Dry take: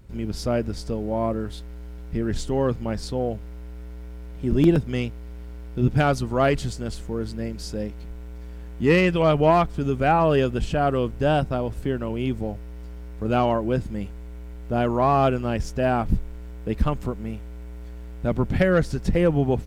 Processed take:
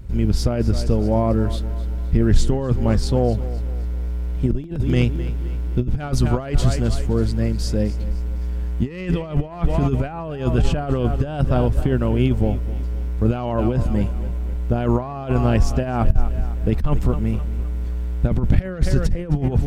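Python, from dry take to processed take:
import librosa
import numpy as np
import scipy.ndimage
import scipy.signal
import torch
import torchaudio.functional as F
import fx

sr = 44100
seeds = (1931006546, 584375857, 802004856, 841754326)

y = fx.echo_feedback(x, sr, ms=258, feedback_pct=44, wet_db=-16.0)
y = fx.over_compress(y, sr, threshold_db=-24.0, ratio=-0.5)
y = fx.low_shelf(y, sr, hz=130.0, db=11.5)
y = y * 10.0 ** (2.0 / 20.0)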